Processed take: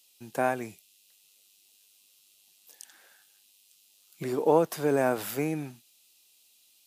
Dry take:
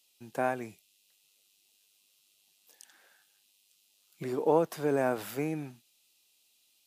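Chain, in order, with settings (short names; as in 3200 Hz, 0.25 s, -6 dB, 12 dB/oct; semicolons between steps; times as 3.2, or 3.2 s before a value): high shelf 4900 Hz +5 dB; gain +3 dB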